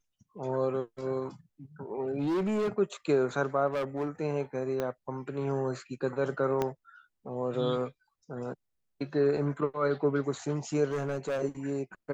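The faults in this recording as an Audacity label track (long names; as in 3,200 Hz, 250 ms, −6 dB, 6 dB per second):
2.040000	2.690000	clipping −26 dBFS
3.670000	4.080000	clipping −27 dBFS
4.800000	4.800000	click −18 dBFS
6.620000	6.620000	click −16 dBFS
10.880000	11.420000	clipping −27.5 dBFS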